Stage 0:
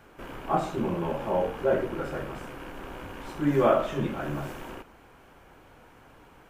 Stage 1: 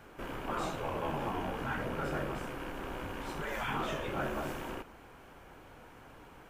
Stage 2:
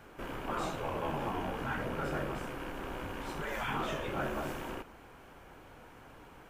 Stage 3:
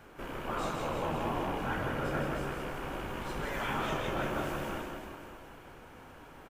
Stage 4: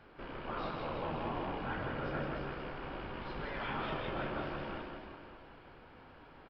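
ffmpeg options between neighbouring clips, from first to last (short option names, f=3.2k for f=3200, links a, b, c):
-af "afftfilt=real='re*lt(hypot(re,im),0.141)':imag='im*lt(hypot(re,im),0.141)':win_size=1024:overlap=0.75"
-af anull
-af "aecho=1:1:160|336|529.6|742.6|976.8:0.631|0.398|0.251|0.158|0.1"
-af "aresample=11025,aresample=44100,volume=-4.5dB"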